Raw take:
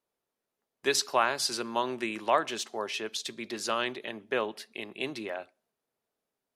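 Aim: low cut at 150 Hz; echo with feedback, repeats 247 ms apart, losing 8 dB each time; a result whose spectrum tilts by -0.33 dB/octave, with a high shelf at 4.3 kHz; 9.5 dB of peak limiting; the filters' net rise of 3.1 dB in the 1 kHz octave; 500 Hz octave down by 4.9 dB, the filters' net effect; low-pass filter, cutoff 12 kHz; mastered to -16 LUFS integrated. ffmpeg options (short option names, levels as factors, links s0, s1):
-af "highpass=150,lowpass=12000,equalizer=f=500:t=o:g=-8.5,equalizer=f=1000:t=o:g=5.5,highshelf=f=4300:g=7,alimiter=limit=0.119:level=0:latency=1,aecho=1:1:247|494|741|988|1235:0.398|0.159|0.0637|0.0255|0.0102,volume=6.31"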